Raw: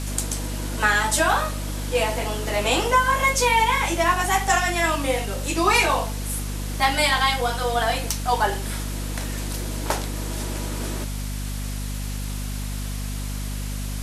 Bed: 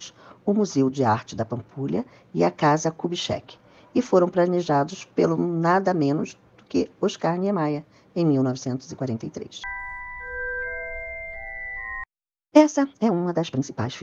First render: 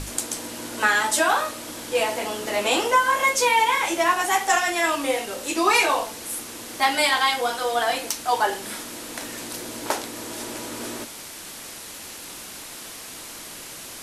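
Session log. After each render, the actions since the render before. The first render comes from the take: hum notches 50/100/150/200/250 Hz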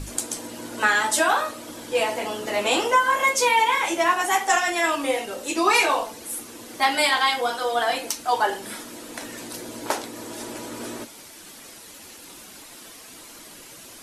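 noise reduction 8 dB, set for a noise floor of -39 dBFS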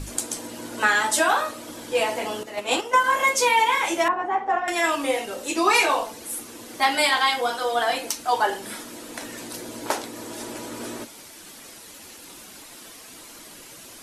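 2.43–3.04 s: gate -22 dBFS, range -10 dB; 4.08–4.68 s: low-pass 1.1 kHz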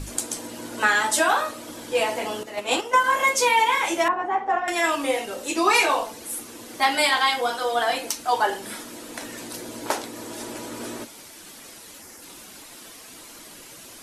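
12.01–12.22 s: time-frequency box 2.3–4.7 kHz -8 dB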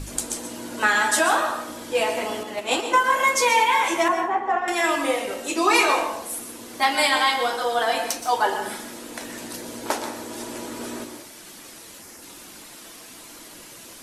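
plate-style reverb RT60 0.63 s, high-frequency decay 0.6×, pre-delay 110 ms, DRR 7 dB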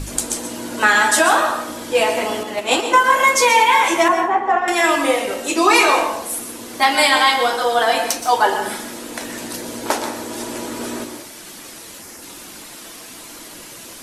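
trim +6 dB; peak limiter -3 dBFS, peak gain reduction 2 dB

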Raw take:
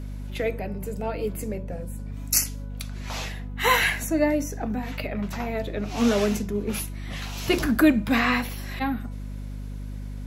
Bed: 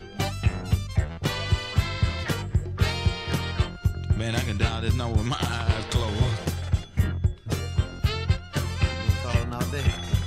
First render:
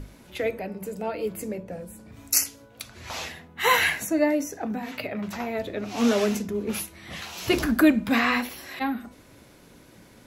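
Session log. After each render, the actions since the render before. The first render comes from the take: hum notches 50/100/150/200/250 Hz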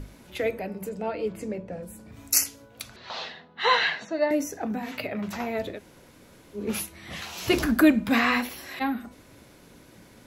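0.89–1.83 s: distance through air 70 m; 2.96–4.31 s: cabinet simulation 220–4400 Hz, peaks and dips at 300 Hz -10 dB, 2.3 kHz -8 dB, 4.1 kHz +6 dB; 5.76–6.58 s: room tone, crossfade 0.10 s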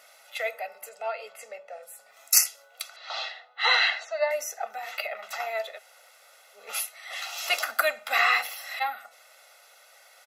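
high-pass 700 Hz 24 dB/octave; comb 1.5 ms, depth 86%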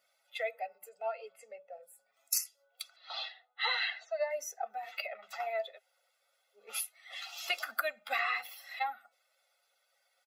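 expander on every frequency bin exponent 1.5; compression 5:1, threshold -30 dBFS, peak gain reduction 14.5 dB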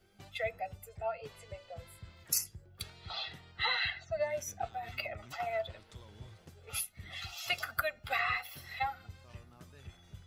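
add bed -27 dB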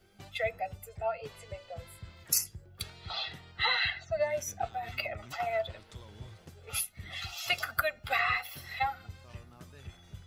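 trim +3.5 dB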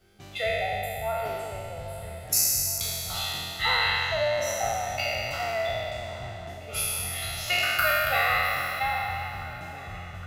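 spectral sustain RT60 2.64 s; filtered feedback delay 813 ms, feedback 77%, low-pass 3.3 kHz, level -16.5 dB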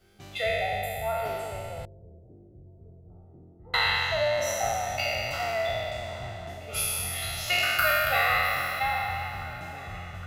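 1.85–3.74 s: four-pole ladder low-pass 410 Hz, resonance 55%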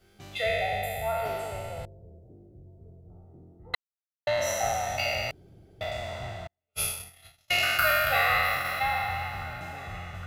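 3.75–4.27 s: mute; 5.31–5.81 s: room tone; 6.47–8.65 s: gate -30 dBFS, range -48 dB

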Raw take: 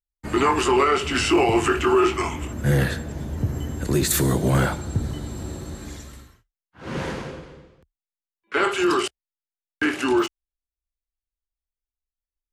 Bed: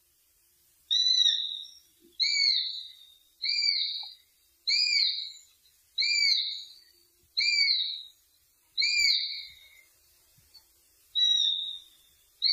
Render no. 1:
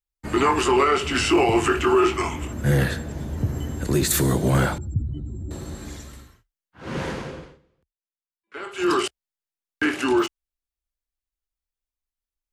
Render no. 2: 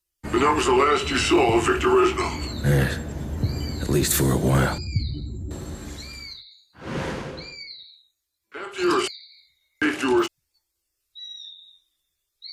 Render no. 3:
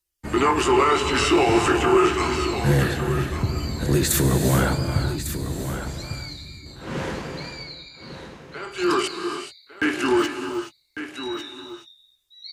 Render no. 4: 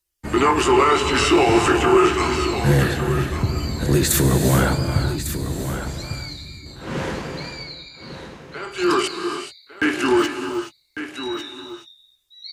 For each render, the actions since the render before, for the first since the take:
4.78–5.51 s: spectral contrast enhancement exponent 2.1; 7.43–8.89 s: dip -14 dB, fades 0.16 s
add bed -14.5 dB
on a send: delay 1150 ms -10.5 dB; on the sum: gated-style reverb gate 450 ms rising, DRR 7 dB
trim +2.5 dB

